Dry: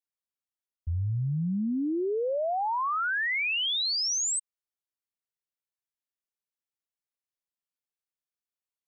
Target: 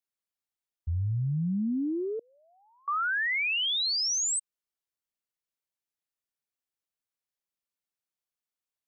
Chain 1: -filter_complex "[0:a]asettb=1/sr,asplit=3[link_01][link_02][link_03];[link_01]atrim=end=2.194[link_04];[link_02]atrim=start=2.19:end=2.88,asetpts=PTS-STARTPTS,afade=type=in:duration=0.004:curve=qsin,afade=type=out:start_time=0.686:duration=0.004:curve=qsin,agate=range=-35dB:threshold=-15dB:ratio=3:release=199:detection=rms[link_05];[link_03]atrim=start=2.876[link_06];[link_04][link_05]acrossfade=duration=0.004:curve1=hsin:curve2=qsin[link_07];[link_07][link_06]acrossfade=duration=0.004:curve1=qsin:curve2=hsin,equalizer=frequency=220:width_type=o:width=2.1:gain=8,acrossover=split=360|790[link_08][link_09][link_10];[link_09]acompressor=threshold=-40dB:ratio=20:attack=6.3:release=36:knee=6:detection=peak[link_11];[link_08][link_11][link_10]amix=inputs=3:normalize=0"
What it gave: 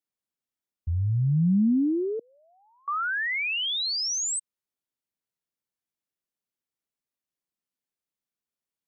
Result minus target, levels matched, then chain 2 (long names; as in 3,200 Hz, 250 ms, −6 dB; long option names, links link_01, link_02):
250 Hz band +4.5 dB
-filter_complex "[0:a]asettb=1/sr,asplit=3[link_01][link_02][link_03];[link_01]atrim=end=2.194[link_04];[link_02]atrim=start=2.19:end=2.88,asetpts=PTS-STARTPTS,afade=type=in:duration=0.004:curve=qsin,afade=type=out:start_time=0.686:duration=0.004:curve=qsin,agate=range=-35dB:threshold=-15dB:ratio=3:release=199:detection=rms[link_05];[link_03]atrim=start=2.876[link_06];[link_04][link_05]acrossfade=duration=0.004:curve1=hsin:curve2=qsin[link_07];[link_07][link_06]acrossfade=duration=0.004:curve1=qsin:curve2=hsin,acrossover=split=360|790[link_08][link_09][link_10];[link_09]acompressor=threshold=-40dB:ratio=20:attack=6.3:release=36:knee=6:detection=peak[link_11];[link_08][link_11][link_10]amix=inputs=3:normalize=0"